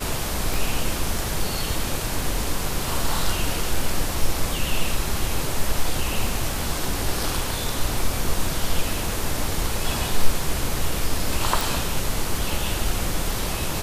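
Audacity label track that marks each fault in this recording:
0.540000	0.540000	pop
11.610000	11.610000	pop

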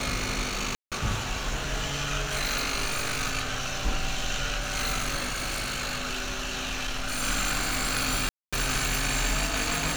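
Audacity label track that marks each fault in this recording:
0.750000	0.920000	gap 0.167 s
5.320000	7.230000	clipped -26.5 dBFS
8.290000	8.530000	gap 0.236 s

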